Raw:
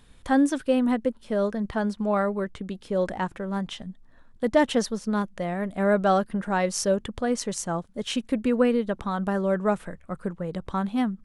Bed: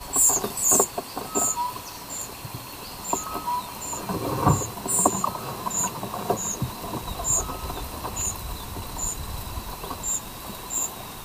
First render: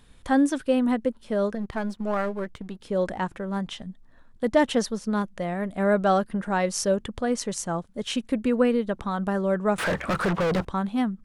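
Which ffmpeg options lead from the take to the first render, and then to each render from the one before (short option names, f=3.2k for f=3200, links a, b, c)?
-filter_complex "[0:a]asettb=1/sr,asplit=3[a][b][c];[a]atrim=end=1.554[d];[b]atrim=start=1.55:end=2.83,asetpts=PTS-STARTPTS,afade=t=in:d=0.004:c=qsin,afade=t=out:st=1.276:d=0.004:c=qsin,aeval=exprs='if(lt(val(0),0),0.447*val(0),val(0))':c=same[e];[c]atrim=start=2.826[f];[d][e]acrossfade=d=0.004:c1=hsin:c2=qsin[g];[g][f]acrossfade=d=0.004:c1=qsin:c2=hsin,asettb=1/sr,asplit=3[h][i][j];[h]atrim=end=9.784[k];[i]atrim=start=9.78:end=10.65,asetpts=PTS-STARTPTS,afade=t=in:d=0.004:c=qsin,afade=t=out:st=0.866:d=0.004:c=qsin,asplit=2[l][m];[m]highpass=f=720:p=1,volume=41dB,asoftclip=type=tanh:threshold=-16.5dB[n];[l][n]amix=inputs=2:normalize=0,lowpass=f=2.2k:p=1,volume=-6dB[o];[j]atrim=start=10.646[p];[k][o]acrossfade=d=0.004:c1=hsin:c2=qsin[q];[q][p]acrossfade=d=0.004:c1=qsin:c2=hsin"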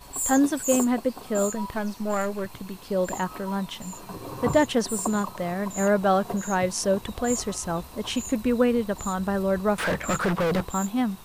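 -filter_complex "[1:a]volume=-9.5dB[a];[0:a][a]amix=inputs=2:normalize=0"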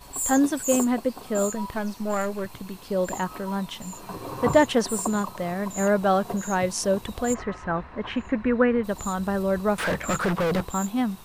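-filter_complex "[0:a]asettb=1/sr,asplit=3[a][b][c];[a]atrim=end=4.044[d];[b]atrim=start=4.04:end=5.02,asetpts=PTS-STARTPTS,afade=t=in:d=0.004:c=qsin,afade=t=out:st=0.976:d=0.004:c=qsin,equalizer=f=1.1k:w=0.43:g=3.5[e];[c]atrim=start=5.016[f];[d][e]acrossfade=d=0.004:c1=hsin:c2=qsin[g];[g][f]acrossfade=d=0.004:c1=qsin:c2=hsin,asplit=3[h][i][j];[h]afade=t=out:st=7.33:d=0.02[k];[i]lowpass=f=1.8k:t=q:w=2.8,afade=t=in:st=7.33:d=0.02,afade=t=out:st=8.83:d=0.02[l];[j]afade=t=in:st=8.83:d=0.02[m];[k][l][m]amix=inputs=3:normalize=0"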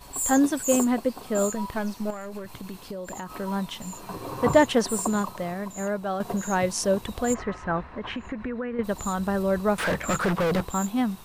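-filter_complex "[0:a]asettb=1/sr,asplit=3[a][b][c];[a]atrim=end=2.104[d];[b]atrim=start=2.1:end=3.3,asetpts=PTS-STARTPTS,afade=t=in:d=0.004:c=qsin,afade=t=out:st=1.196:d=0.004:c=qsin,acompressor=threshold=-31dB:ratio=12:attack=3.2:release=140:knee=1:detection=peak[e];[c]atrim=start=3.296[f];[d][e]acrossfade=d=0.004:c1=hsin:c2=qsin[g];[g][f]acrossfade=d=0.004:c1=qsin:c2=hsin,asettb=1/sr,asplit=3[h][i][j];[h]atrim=end=7.934[k];[i]atrim=start=7.93:end=8.79,asetpts=PTS-STARTPTS,afade=t=in:d=0.004:c=qsin,afade=t=out:st=0.856:d=0.004:c=qsin,acompressor=threshold=-28dB:ratio=6:attack=3.2:release=140:knee=1:detection=peak[l];[j]atrim=start=8.786[m];[k][l]acrossfade=d=0.004:c1=hsin:c2=qsin[n];[n][m]acrossfade=d=0.004:c1=qsin:c2=hsin,asplit=2[o][p];[o]atrim=end=6.2,asetpts=PTS-STARTPTS,afade=t=out:st=5.3:d=0.9:c=qua:silence=0.375837[q];[p]atrim=start=6.2,asetpts=PTS-STARTPTS,afade=t=in:d=0.004:c=hsin:silence=0.375837[r];[q][r]concat=n=2:v=0:a=1"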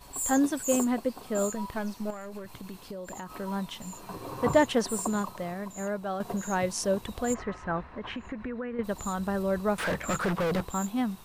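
-af "volume=-4dB"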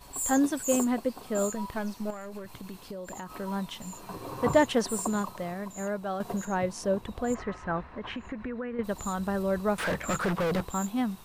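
-filter_complex "[0:a]asettb=1/sr,asplit=3[a][b][c];[a]atrim=end=6.454[d];[b]atrim=start=6.45:end=7.34,asetpts=PTS-STARTPTS,afade=t=in:d=0.004:c=qsin,afade=t=out:st=0.886:d=0.004:c=qsin,highshelf=f=2.9k:g=-9.5[e];[c]atrim=start=7.336[f];[d][e]acrossfade=d=0.004:c1=hsin:c2=qsin[g];[g][f]acrossfade=d=0.004:c1=qsin:c2=hsin"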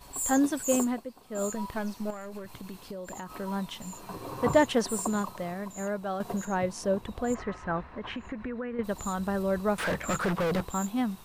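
-filter_complex "[0:a]asplit=3[a][b][c];[a]atrim=end=1.06,asetpts=PTS-STARTPTS,afade=t=out:st=0.82:d=0.24:silence=0.298538[d];[b]atrim=start=1.06:end=1.28,asetpts=PTS-STARTPTS,volume=-10.5dB[e];[c]atrim=start=1.28,asetpts=PTS-STARTPTS,afade=t=in:d=0.24:silence=0.298538[f];[d][e][f]concat=n=3:v=0:a=1"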